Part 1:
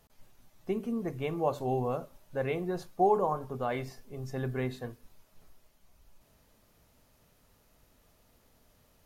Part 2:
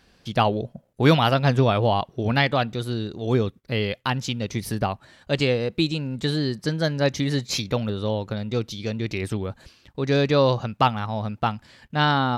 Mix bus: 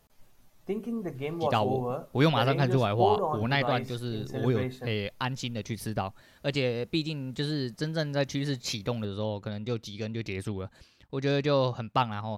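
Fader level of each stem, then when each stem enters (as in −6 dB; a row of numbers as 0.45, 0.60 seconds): 0.0, −6.5 decibels; 0.00, 1.15 seconds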